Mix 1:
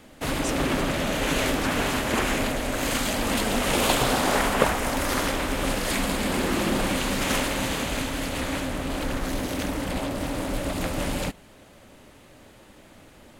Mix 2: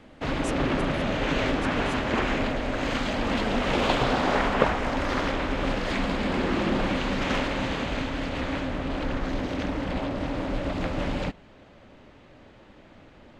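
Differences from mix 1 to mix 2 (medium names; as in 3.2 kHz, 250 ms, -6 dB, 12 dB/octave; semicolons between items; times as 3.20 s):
speech: remove frequency weighting D; background: add distance through air 180 m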